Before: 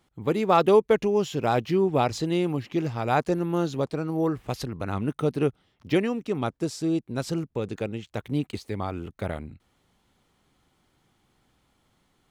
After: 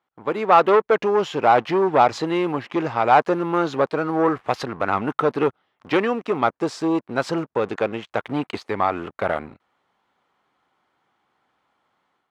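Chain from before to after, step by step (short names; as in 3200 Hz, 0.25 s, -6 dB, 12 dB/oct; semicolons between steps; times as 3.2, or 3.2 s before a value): AGC gain up to 8.5 dB; sample leveller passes 2; band-pass 1100 Hz, Q 1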